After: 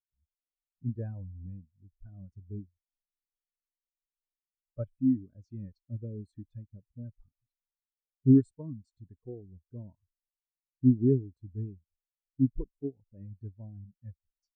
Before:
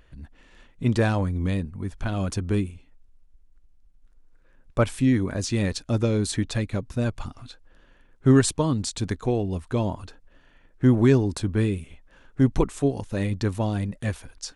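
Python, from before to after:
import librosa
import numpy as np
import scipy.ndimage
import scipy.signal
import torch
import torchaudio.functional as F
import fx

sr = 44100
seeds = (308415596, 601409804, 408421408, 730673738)

y = fx.spectral_expand(x, sr, expansion=2.5)
y = y * 10.0 ** (-3.5 / 20.0)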